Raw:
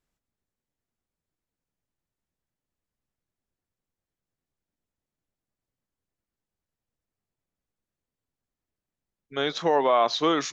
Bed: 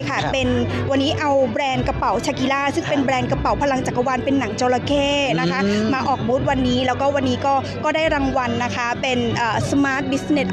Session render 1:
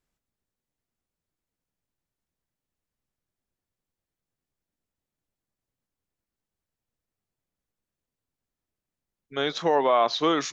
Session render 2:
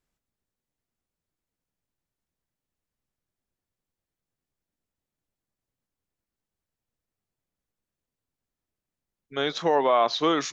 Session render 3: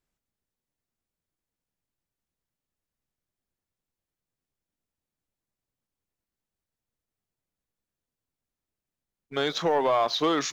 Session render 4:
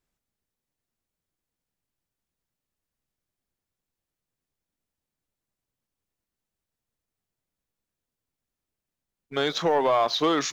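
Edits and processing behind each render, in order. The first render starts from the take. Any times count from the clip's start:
9.75–10.21 LPF 6500 Hz
nothing audible
compressor 1.5:1, threshold -29 dBFS, peak gain reduction 5 dB; sample leveller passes 1
gain +1.5 dB

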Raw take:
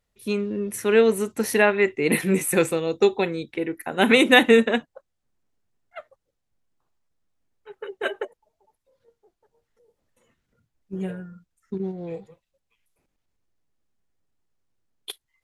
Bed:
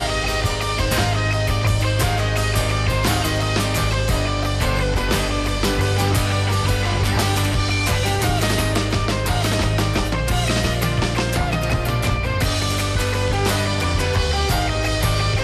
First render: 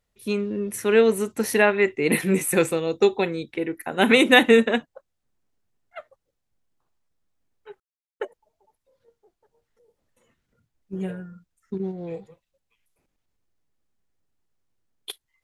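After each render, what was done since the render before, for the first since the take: 7.8–8.2 mute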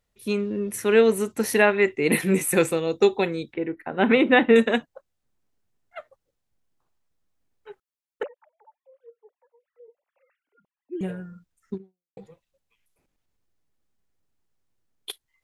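3.53–4.56 air absorption 420 m; 8.23–11.01 sine-wave speech; 11.74–12.17 fade out exponential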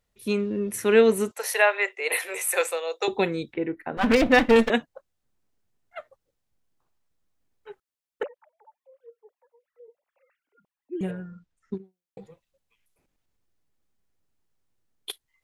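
1.31–3.08 steep high-pass 510 Hz; 3.97–4.7 minimum comb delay 4 ms; 11.11–11.75 air absorption 77 m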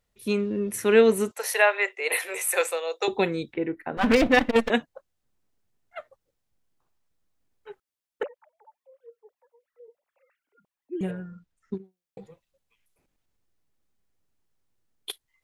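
4.27–4.72 core saturation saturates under 450 Hz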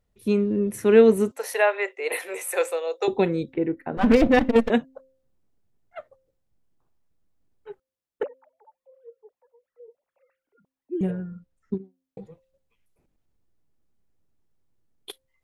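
tilt shelf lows +5.5 dB, about 810 Hz; de-hum 263.7 Hz, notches 2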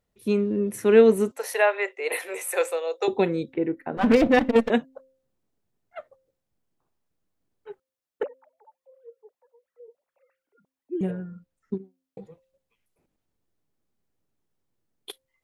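low shelf 98 Hz -10.5 dB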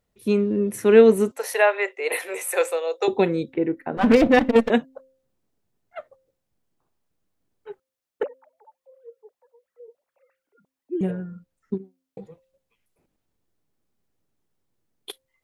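gain +2.5 dB

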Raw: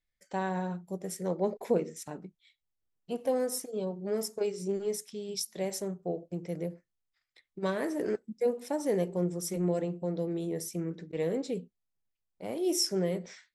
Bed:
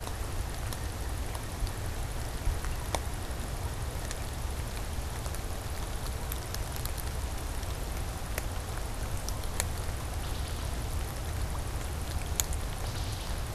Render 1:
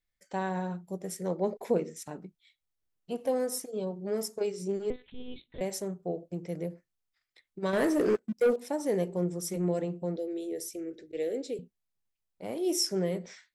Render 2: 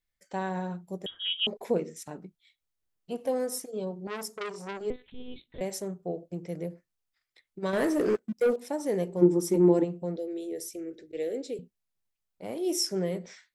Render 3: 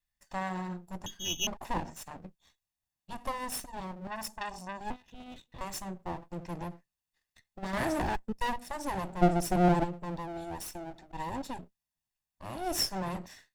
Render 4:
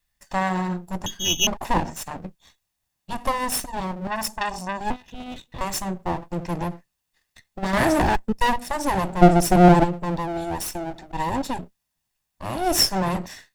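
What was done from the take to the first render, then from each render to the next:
4.9–5.61 monotone LPC vocoder at 8 kHz 250 Hz; 7.73–8.56 sample leveller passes 2; 10.16–11.59 fixed phaser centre 420 Hz, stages 4
1.06–1.47 inverted band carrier 3500 Hz; 4.07–4.81 core saturation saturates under 2000 Hz; 9.21–9.83 small resonant body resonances 320/900 Hz, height 17 dB -> 14 dB, ringing for 25 ms
minimum comb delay 1.1 ms
gain +11.5 dB; limiter -1 dBFS, peak gain reduction 1 dB

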